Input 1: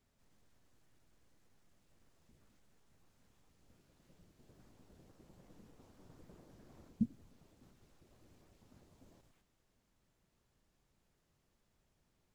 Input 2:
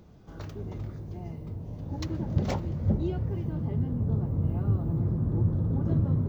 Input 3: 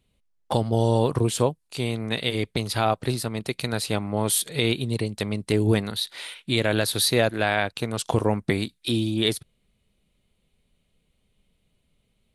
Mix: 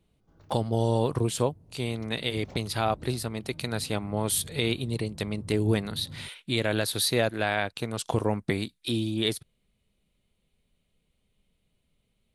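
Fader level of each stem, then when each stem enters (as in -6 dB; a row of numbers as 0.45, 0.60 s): off, -17.5 dB, -4.0 dB; off, 0.00 s, 0.00 s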